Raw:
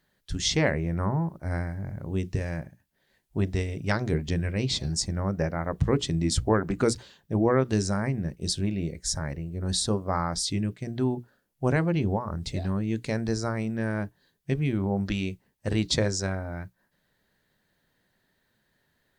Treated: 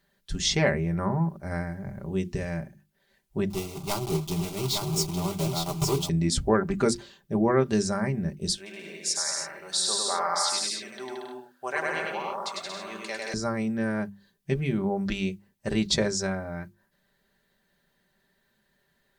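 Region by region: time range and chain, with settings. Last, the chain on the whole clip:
0:03.50–0:06.09: one scale factor per block 3 bits + phaser with its sweep stopped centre 340 Hz, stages 8 + single-tap delay 858 ms −4.5 dB
0:08.56–0:13.34: high-pass filter 790 Hz + bouncing-ball delay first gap 100 ms, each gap 0.75×, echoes 6, each echo −2 dB
whole clip: mains-hum notches 50/100/150/200/250/300/350 Hz; de-essing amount 35%; comb filter 5.1 ms, depth 56%

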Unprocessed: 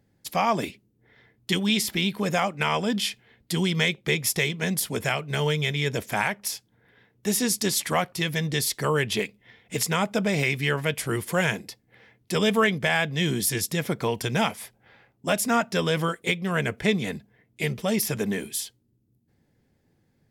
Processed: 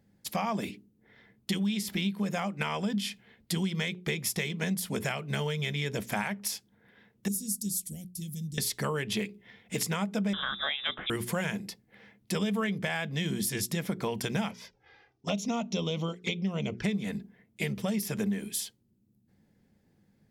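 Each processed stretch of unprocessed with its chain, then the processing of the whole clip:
0:07.28–0:08.58: Chebyshev band-stop filter 130–9,100 Hz + parametric band 120 Hz −7.5 dB 1.3 octaves
0:10.33–0:11.10: high-pass filter 160 Hz + voice inversion scrambler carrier 3,700 Hz
0:14.51–0:16.84: high shelf with overshoot 7,400 Hz −10.5 dB, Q 3 + flanger swept by the level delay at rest 2.7 ms, full sweep at −22.5 dBFS
whole clip: parametric band 200 Hz +10.5 dB 0.28 octaves; mains-hum notches 60/120/180/240/300/360/420 Hz; downward compressor, threshold −26 dBFS; level −1.5 dB

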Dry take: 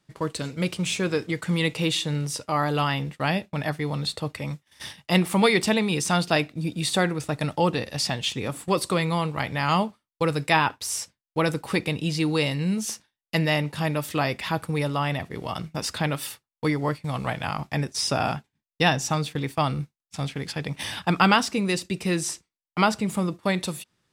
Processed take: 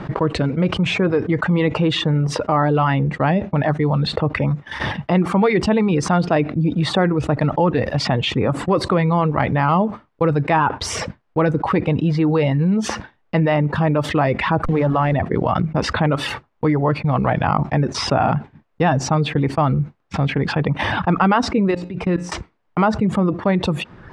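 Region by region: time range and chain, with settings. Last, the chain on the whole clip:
0:14.64–0:15.14: hold until the input has moved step −33 dBFS + mains-hum notches 50/100/150/200/250 Hz + upward compression, threshold −29 dBFS
0:21.71–0:22.32: parametric band 76 Hz −2 dB 1.5 octaves + output level in coarse steps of 24 dB + tuned comb filter 59 Hz, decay 0.27 s, harmonics odd, mix 40%
whole clip: reverb reduction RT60 0.55 s; low-pass filter 1,300 Hz 12 dB per octave; envelope flattener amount 70%; level +3.5 dB

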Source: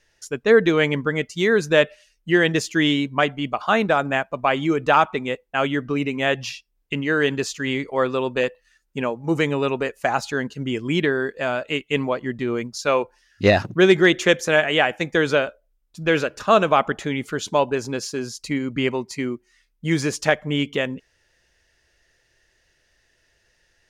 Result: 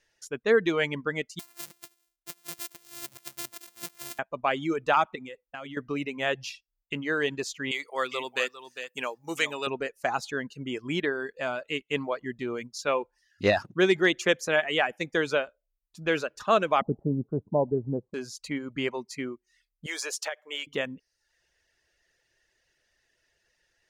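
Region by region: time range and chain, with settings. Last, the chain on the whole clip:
0:01.39–0:04.19: samples sorted by size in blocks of 128 samples + first-order pre-emphasis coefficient 0.9 + compressor whose output falls as the input rises −34 dBFS, ratio −0.5
0:05.15–0:05.77: notch filter 410 Hz, Q 9.2 + downward compressor 10 to 1, threshold −28 dBFS
0:07.71–0:09.67: spectral tilt +4 dB per octave + single-tap delay 403 ms −10 dB
0:16.81–0:18.14: Butterworth low-pass 830 Hz + parametric band 120 Hz +13 dB 2.2 octaves
0:19.86–0:20.67: high-pass filter 500 Hz 24 dB per octave + high-shelf EQ 5,000 Hz +7.5 dB + downward compressor 16 to 1, threshold −21 dBFS
whole clip: reverb reduction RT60 0.58 s; low-shelf EQ 170 Hz −6.5 dB; level −6 dB

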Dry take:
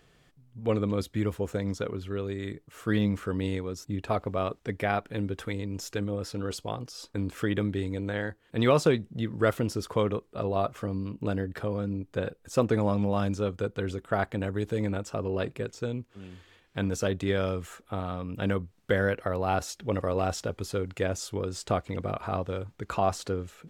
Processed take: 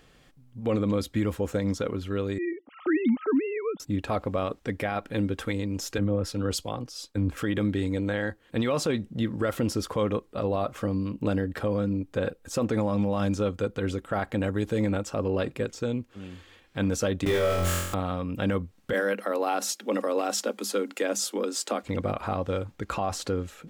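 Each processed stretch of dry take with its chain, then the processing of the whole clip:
0:02.38–0:03.80: three sine waves on the formant tracks + parametric band 1,700 Hz −6.5 dB 0.28 octaves
0:05.98–0:07.37: low-shelf EQ 100 Hz +8.5 dB + multiband upward and downward expander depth 100%
0:17.25–0:17.94: converter with a step at zero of −29.5 dBFS + noise gate with hold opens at −21 dBFS, closes at −29 dBFS + flutter between parallel walls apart 3.9 metres, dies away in 0.81 s
0:18.93–0:21.83: Chebyshev high-pass filter 200 Hz, order 10 + high-shelf EQ 5,400 Hz +8.5 dB
whole clip: comb filter 3.7 ms, depth 30%; brickwall limiter −21 dBFS; level +4 dB

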